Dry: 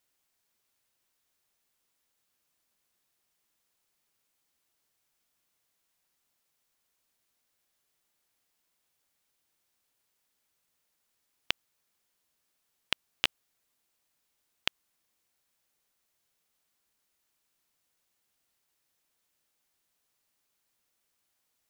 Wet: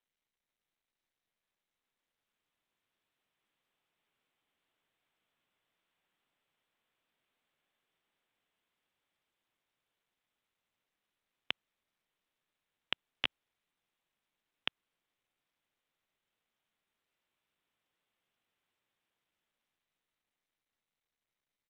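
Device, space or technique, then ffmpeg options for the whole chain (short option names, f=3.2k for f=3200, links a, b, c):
Bluetooth headset: -af "highpass=110,dynaudnorm=f=280:g=21:m=9dB,aresample=8000,aresample=44100,volume=-8.5dB" -ar 32000 -c:a sbc -b:a 64k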